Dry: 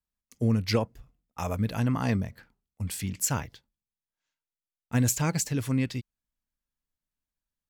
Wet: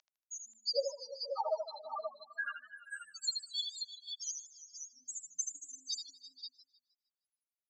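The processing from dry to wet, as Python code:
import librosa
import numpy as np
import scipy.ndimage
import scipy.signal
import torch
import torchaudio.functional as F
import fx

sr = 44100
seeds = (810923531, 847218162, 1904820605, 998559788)

y = x + 0.5 * 10.0 ** (-19.5 / 20.0) * np.diff(np.sign(x), prepend=np.sign(x[:1]))
y = fx.leveller(y, sr, passes=1)
y = fx.spec_topn(y, sr, count=2)
y = scipy.signal.sosfilt(scipy.signal.cheby1(5, 1.0, [600.0, 6200.0], 'bandpass', fs=sr, output='sos'), y)
y = fx.echo_multitap(y, sr, ms=(80, 341, 479, 534), db=(-5.5, -14.0, -19.0, -6.5))
y = fx.echo_warbled(y, sr, ms=155, feedback_pct=37, rate_hz=2.8, cents=133, wet_db=-16)
y = y * 10.0 ** (9.5 / 20.0)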